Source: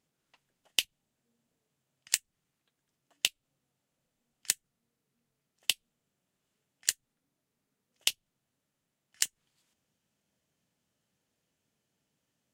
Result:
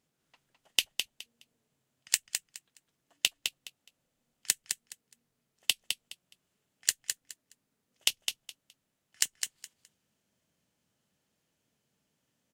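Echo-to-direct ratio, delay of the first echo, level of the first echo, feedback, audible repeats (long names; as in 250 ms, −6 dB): −6.0 dB, 209 ms, −6.0 dB, 20%, 3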